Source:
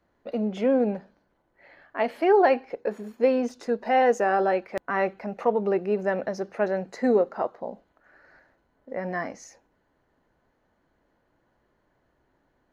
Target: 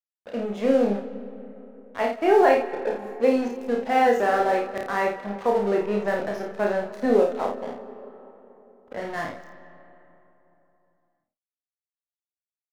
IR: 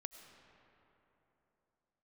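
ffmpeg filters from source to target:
-filter_complex "[0:a]aeval=exprs='sgn(val(0))*max(abs(val(0))-0.0119,0)':c=same,asplit=2[s0][s1];[s1]adelay=30,volume=0.708[s2];[s0][s2]amix=inputs=2:normalize=0,asplit=2[s3][s4];[1:a]atrim=start_sample=2205,adelay=54[s5];[s4][s5]afir=irnorm=-1:irlink=0,volume=0.944[s6];[s3][s6]amix=inputs=2:normalize=0"

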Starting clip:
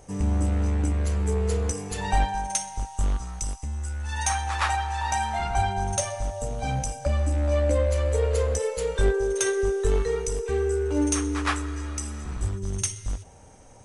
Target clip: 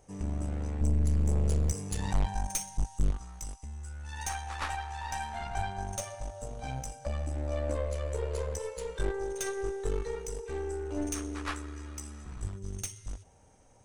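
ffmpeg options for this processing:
-filter_complex "[0:a]asettb=1/sr,asplit=3[s0][s1][s2];[s0]atrim=end=0.814[s3];[s1]atrim=start=0.81:end=3.11,asetpts=PTS-STARTPTS,afade=t=in:d=0.004:c=qsin,afade=t=out:st=2.296:d=0.004:c=qsin,bass=f=250:g=11,treble=f=4000:g=7[s4];[s2]atrim=start=3.106[s5];[s3][s4]acrossfade=d=0.004:c1=hsin:c2=qsin[s6];[s6][s5]acrossfade=d=0.004:c1=qsin:c2=hsin,aeval=exprs='(tanh(7.94*val(0)+0.75)-tanh(0.75))/7.94':c=same,volume=0.501"

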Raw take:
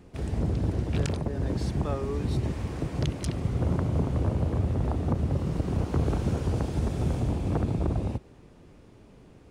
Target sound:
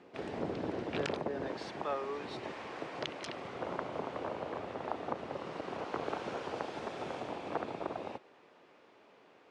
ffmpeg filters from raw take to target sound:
-af "asetnsamples=n=441:p=0,asendcmd='1.48 highpass f 620',highpass=390,lowpass=3600,volume=1.19"

